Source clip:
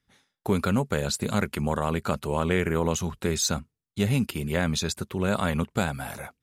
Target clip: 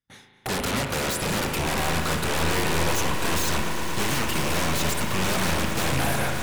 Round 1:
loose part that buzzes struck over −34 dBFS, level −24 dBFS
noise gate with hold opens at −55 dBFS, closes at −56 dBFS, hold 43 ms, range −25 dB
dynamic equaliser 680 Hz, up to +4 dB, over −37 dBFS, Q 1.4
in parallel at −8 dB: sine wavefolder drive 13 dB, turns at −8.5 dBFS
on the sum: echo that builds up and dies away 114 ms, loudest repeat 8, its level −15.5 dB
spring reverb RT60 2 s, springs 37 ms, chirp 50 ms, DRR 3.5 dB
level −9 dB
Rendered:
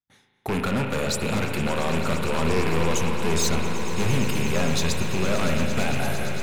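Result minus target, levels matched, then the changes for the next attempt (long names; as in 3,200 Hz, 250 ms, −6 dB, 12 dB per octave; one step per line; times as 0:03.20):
sine wavefolder: distortion −21 dB
change: sine wavefolder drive 25 dB, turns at −8.5 dBFS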